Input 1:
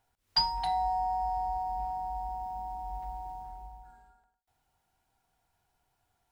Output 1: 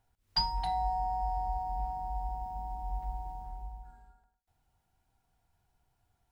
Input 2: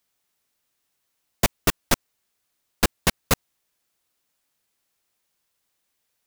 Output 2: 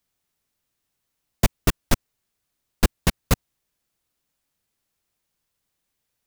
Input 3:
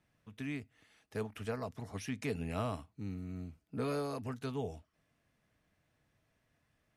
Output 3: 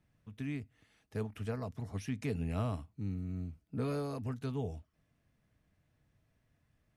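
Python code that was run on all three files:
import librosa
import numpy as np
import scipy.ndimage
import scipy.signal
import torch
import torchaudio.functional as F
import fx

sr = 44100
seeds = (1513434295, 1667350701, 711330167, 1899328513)

y = fx.low_shelf(x, sr, hz=230.0, db=10.5)
y = y * 10.0 ** (-3.5 / 20.0)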